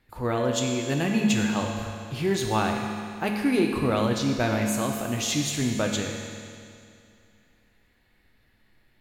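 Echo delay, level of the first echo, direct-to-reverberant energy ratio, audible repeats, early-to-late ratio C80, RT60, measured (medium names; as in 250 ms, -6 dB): no echo, no echo, 1.5 dB, no echo, 4.5 dB, 2.4 s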